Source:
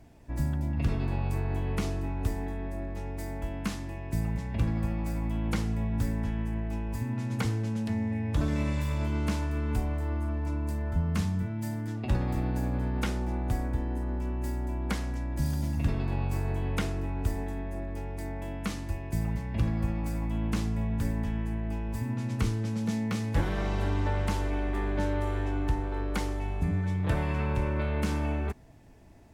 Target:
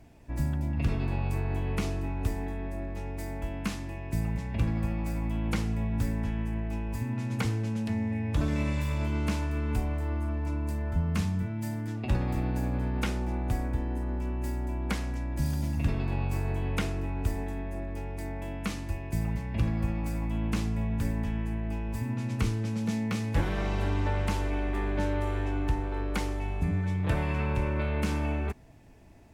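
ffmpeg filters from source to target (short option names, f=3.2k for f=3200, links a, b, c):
-af "equalizer=f=2.5k:t=o:w=0.4:g=3.5"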